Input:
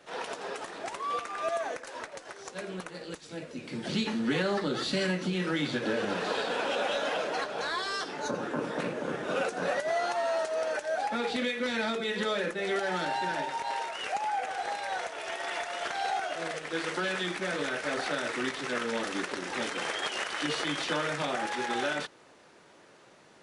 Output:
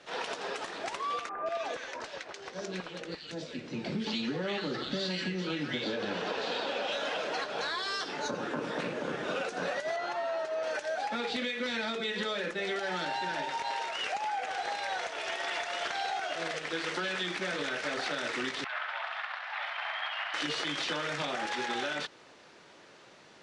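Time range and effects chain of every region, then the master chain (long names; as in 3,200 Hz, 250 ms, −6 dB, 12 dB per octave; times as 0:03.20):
0:01.29–0:06.92: low-pass filter 6,500 Hz + multiband delay without the direct sound lows, highs 170 ms, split 1,500 Hz
0:09.96–0:10.64: high-shelf EQ 3,900 Hz −11.5 dB + notch comb filter 240 Hz
0:18.64–0:20.34: Butterworth high-pass 650 Hz 72 dB per octave + high-frequency loss of the air 420 metres + flutter between parallel walls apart 11.6 metres, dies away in 0.71 s
whole clip: low-pass filter 4,700 Hz 12 dB per octave; high-shelf EQ 3,200 Hz +10.5 dB; downward compressor, threshold −30 dBFS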